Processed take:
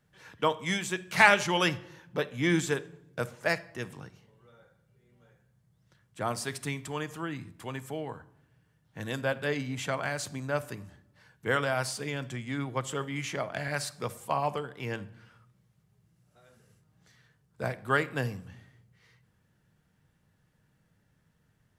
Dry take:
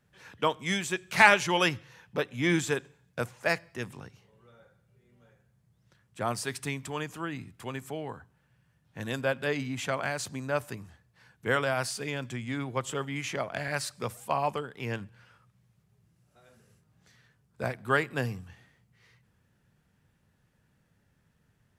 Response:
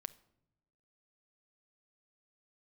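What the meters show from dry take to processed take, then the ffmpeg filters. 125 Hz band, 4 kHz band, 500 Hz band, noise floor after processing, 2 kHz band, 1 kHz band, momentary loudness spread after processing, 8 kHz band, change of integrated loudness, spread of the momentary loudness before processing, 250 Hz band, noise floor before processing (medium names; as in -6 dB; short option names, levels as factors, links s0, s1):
+0.5 dB, -0.5 dB, -0.5 dB, -71 dBFS, -1.0 dB, -1.0 dB, 13 LU, -0.5 dB, -0.5 dB, 13 LU, 0.0 dB, -71 dBFS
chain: -filter_complex "[0:a]bandreject=f=2500:w=26[s0];[1:a]atrim=start_sample=2205[s1];[s0][s1]afir=irnorm=-1:irlink=0,volume=1.41"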